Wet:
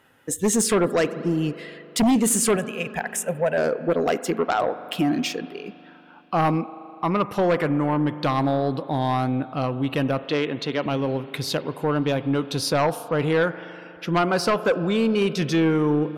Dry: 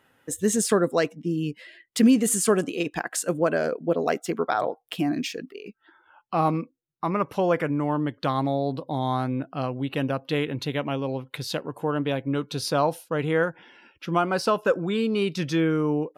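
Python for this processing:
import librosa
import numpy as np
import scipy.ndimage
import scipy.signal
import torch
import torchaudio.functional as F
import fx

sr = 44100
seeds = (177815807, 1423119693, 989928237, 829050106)

y = fx.fixed_phaser(x, sr, hz=1200.0, stages=6, at=(2.56, 3.58))
y = fx.rev_spring(y, sr, rt60_s=3.1, pass_ms=(40,), chirp_ms=70, drr_db=15.0)
y = fx.fold_sine(y, sr, drive_db=6, ceiling_db=-9.0)
y = fx.bandpass_edges(y, sr, low_hz=210.0, high_hz=5700.0, at=(10.24, 10.86))
y = F.gain(torch.from_numpy(y), -5.5).numpy()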